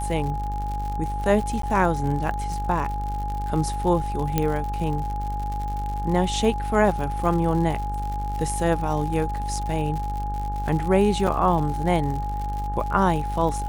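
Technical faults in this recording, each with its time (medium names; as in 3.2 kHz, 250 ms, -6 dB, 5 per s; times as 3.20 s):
buzz 50 Hz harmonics 37 -29 dBFS
crackle 110 per s -30 dBFS
whine 830 Hz -29 dBFS
1.62–1.63 s: dropout 13 ms
4.38 s: pop -7 dBFS
11.27 s: dropout 4.3 ms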